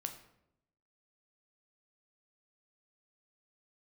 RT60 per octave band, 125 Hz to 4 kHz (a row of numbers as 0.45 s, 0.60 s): 1.0 s, 1.0 s, 0.90 s, 0.70 s, 0.65 s, 0.50 s